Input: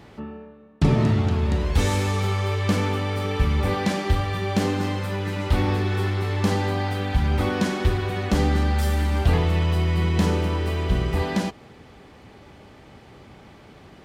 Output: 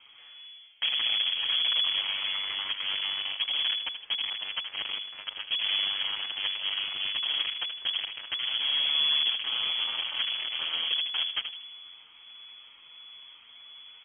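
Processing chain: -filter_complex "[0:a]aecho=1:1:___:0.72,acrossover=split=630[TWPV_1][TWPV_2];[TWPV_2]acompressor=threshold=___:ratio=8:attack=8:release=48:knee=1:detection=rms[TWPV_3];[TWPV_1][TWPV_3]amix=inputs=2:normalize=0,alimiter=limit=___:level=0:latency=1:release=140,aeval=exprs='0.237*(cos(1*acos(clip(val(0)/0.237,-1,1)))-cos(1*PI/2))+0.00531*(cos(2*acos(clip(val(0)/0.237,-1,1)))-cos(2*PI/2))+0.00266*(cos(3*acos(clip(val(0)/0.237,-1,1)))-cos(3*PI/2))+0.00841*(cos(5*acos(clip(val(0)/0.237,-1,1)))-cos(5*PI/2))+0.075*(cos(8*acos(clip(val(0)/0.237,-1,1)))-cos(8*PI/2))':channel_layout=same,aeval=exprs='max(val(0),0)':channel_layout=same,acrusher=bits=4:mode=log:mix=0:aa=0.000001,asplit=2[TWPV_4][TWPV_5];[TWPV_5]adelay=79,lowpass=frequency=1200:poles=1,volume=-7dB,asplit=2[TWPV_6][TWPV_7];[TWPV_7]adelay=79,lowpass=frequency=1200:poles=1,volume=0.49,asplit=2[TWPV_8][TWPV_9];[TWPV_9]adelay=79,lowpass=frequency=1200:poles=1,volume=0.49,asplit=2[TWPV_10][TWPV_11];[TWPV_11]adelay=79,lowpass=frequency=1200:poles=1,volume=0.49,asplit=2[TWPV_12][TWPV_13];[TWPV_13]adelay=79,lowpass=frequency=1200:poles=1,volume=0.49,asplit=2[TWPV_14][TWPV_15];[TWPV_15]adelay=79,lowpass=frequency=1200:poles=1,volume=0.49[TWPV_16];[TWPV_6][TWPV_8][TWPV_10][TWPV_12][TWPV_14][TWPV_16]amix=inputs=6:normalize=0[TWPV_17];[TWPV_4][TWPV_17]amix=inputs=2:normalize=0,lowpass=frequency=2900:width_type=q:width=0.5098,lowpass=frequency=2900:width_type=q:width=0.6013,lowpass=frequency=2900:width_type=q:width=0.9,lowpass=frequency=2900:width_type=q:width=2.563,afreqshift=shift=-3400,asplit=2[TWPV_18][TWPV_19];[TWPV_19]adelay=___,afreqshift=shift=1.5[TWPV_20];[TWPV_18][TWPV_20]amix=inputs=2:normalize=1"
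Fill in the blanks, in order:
0.9, -39dB, -12.5dB, 6.9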